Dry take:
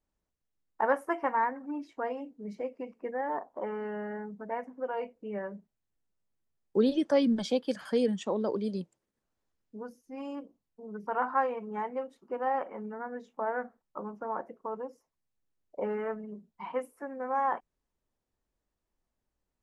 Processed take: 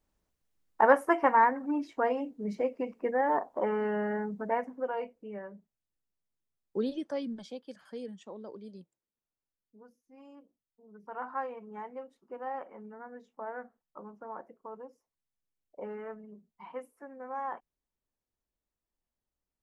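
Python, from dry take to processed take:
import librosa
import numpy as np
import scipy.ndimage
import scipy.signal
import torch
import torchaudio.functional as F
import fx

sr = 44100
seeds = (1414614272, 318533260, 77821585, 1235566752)

y = fx.gain(x, sr, db=fx.line((4.5, 5.5), (5.44, -6.0), (6.79, -6.0), (7.56, -14.0), (10.84, -14.0), (11.29, -7.5)))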